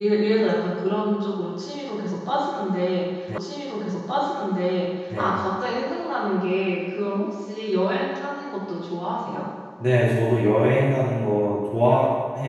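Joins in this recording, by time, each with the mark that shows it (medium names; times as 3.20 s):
3.38 s: repeat of the last 1.82 s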